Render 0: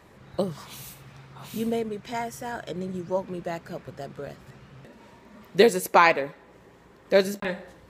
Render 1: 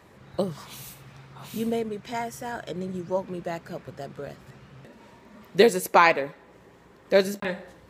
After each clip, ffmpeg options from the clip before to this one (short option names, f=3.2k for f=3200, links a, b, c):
-af "highpass=49"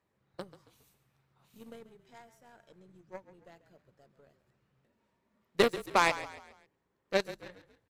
-filter_complex "[0:a]aeval=exprs='0.708*(cos(1*acos(clip(val(0)/0.708,-1,1)))-cos(1*PI/2))+0.0891*(cos(7*acos(clip(val(0)/0.708,-1,1)))-cos(7*PI/2))+0.0158*(cos(8*acos(clip(val(0)/0.708,-1,1)))-cos(8*PI/2))':c=same,asplit=5[a][b][c][d][e];[b]adelay=137,afreqshift=-35,volume=-14.5dB[f];[c]adelay=274,afreqshift=-70,volume=-22.2dB[g];[d]adelay=411,afreqshift=-105,volume=-30dB[h];[e]adelay=548,afreqshift=-140,volume=-37.7dB[i];[a][f][g][h][i]amix=inputs=5:normalize=0,volume=-7.5dB"